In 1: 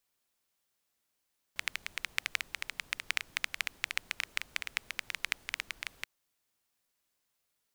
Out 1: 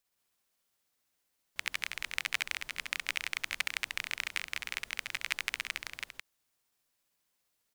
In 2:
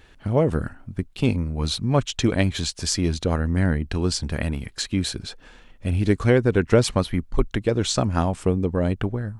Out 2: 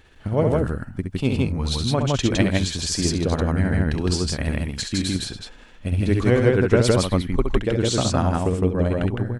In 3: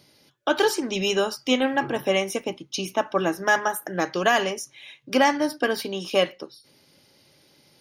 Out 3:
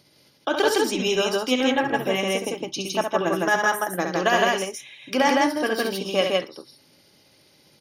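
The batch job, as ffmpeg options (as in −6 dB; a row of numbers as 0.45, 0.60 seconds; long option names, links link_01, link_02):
-af "tremolo=f=15:d=0.37,aecho=1:1:67.06|160.3:0.501|0.891"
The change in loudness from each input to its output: +1.0, +1.5, +1.0 LU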